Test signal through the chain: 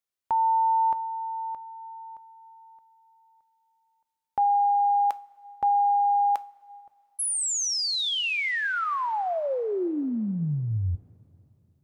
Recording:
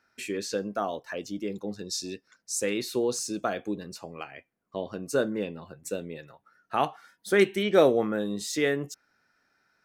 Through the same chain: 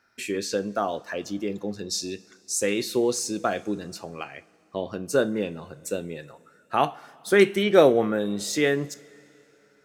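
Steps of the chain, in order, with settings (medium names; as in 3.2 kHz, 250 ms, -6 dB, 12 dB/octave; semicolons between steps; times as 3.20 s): two-slope reverb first 0.32 s, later 3.2 s, from -18 dB, DRR 13.5 dB; trim +3.5 dB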